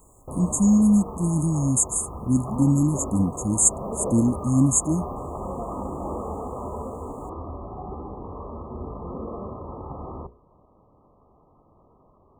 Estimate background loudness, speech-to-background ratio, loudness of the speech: -34.5 LUFS, 13.0 dB, -21.5 LUFS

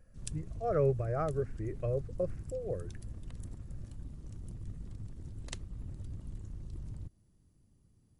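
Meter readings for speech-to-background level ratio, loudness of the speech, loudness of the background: 11.0 dB, -35.5 LUFS, -46.5 LUFS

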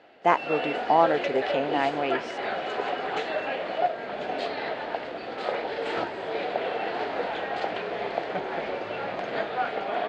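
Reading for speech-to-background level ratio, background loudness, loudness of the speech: 4.5 dB, -30.5 LUFS, -26.0 LUFS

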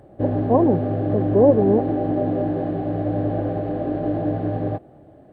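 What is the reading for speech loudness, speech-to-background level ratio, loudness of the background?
-20.0 LUFS, 3.5 dB, -23.5 LUFS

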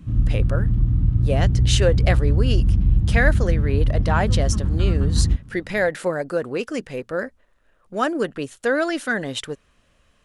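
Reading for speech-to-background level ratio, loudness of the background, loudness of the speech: -5.0 dB, -20.5 LUFS, -25.5 LUFS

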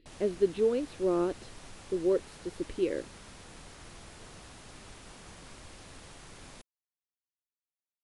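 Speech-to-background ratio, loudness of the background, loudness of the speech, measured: 18.5 dB, -49.5 LUFS, -31.0 LUFS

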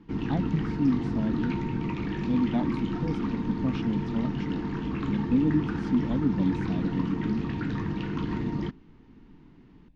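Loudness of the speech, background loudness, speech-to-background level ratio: -30.5 LUFS, -31.0 LUFS, 0.5 dB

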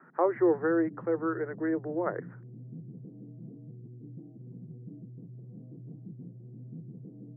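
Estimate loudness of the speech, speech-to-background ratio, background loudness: -29.5 LUFS, 17.0 dB, -46.5 LUFS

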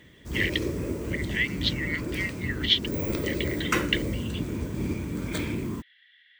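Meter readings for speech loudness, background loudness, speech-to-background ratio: -29.5 LUFS, -31.0 LUFS, 1.5 dB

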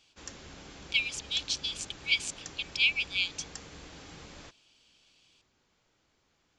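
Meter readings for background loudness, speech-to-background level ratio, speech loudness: -47.5 LUFS, 17.5 dB, -30.0 LUFS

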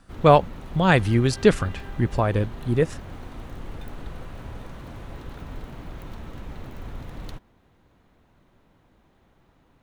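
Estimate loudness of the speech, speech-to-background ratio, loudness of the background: -21.5 LUFS, 18.5 dB, -40.0 LUFS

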